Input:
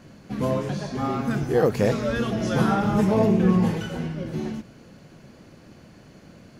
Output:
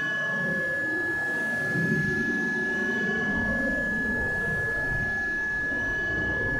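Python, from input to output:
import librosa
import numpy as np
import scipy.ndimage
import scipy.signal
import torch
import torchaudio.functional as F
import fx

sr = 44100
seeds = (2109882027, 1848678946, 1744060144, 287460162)

p1 = fx.dmg_wind(x, sr, seeds[0], corner_hz=410.0, level_db=-26.0)
p2 = fx.peak_eq(p1, sr, hz=210.0, db=2.0, octaves=2.8)
p3 = fx.dereverb_blind(p2, sr, rt60_s=1.6)
p4 = fx.high_shelf(p3, sr, hz=7800.0, db=4.0)
p5 = p4 + fx.echo_thinned(p4, sr, ms=325, feedback_pct=72, hz=690.0, wet_db=-5.0, dry=0)
p6 = fx.paulstretch(p5, sr, seeds[1], factor=9.3, window_s=0.05, from_s=4.16)
p7 = p6 + 10.0 ** (-24.0 / 20.0) * np.sin(2.0 * np.pi * 1700.0 * np.arange(len(p6)) / sr)
y = F.gain(torch.from_numpy(p7), -1.5).numpy()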